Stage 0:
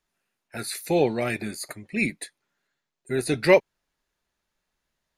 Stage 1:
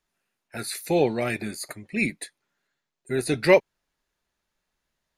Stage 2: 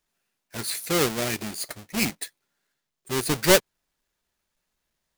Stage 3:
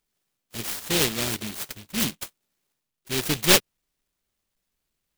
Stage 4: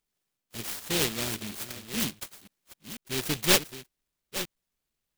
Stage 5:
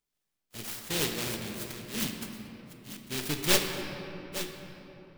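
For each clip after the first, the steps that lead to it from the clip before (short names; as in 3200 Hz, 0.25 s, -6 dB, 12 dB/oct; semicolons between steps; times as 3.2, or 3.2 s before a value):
nothing audible
half-waves squared off; high shelf 3000 Hz +8.5 dB; gain -6.5 dB
noise-modulated delay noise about 3000 Hz, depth 0.34 ms
reverse delay 0.495 s, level -12 dB; gain -4.5 dB
reverb RT60 3.6 s, pre-delay 7 ms, DRR 3.5 dB; gain -3.5 dB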